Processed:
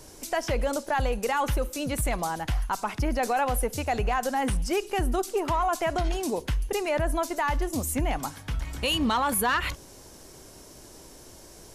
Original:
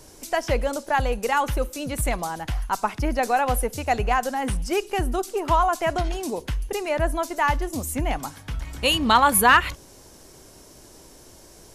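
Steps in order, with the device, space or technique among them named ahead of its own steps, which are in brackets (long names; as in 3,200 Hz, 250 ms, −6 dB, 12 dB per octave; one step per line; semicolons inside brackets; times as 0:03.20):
soft clipper into limiter (soft clipping −9.5 dBFS, distortion −19 dB; brickwall limiter −18 dBFS, peak gain reduction 8 dB)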